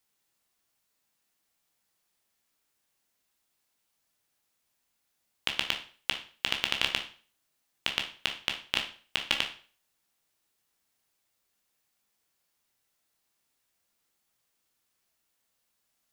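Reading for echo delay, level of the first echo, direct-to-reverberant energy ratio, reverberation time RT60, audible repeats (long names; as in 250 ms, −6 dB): no echo audible, no echo audible, 2.5 dB, 0.40 s, no echo audible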